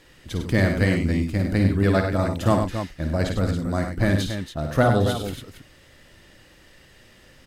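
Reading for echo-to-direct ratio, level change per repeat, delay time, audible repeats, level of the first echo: -2.5 dB, no regular repeats, 52 ms, 4, -8.0 dB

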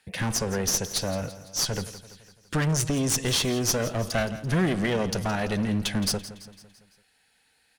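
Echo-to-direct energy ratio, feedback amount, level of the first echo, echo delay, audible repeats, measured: -13.5 dB, 53%, -15.0 dB, 168 ms, 4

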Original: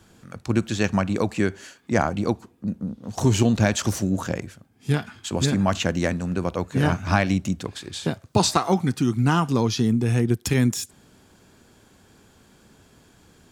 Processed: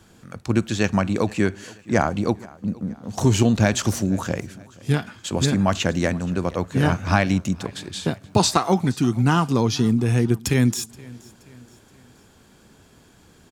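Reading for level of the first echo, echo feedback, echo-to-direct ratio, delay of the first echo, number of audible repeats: -23.0 dB, 46%, -22.0 dB, 475 ms, 2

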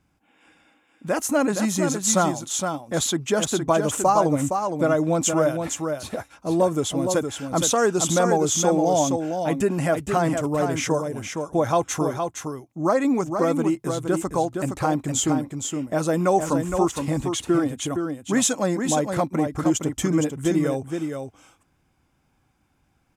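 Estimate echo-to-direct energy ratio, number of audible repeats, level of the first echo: -6.0 dB, 1, -6.0 dB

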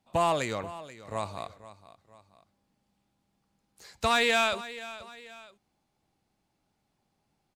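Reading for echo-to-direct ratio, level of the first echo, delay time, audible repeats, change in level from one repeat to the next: -15.5 dB, -16.0 dB, 482 ms, 2, -7.5 dB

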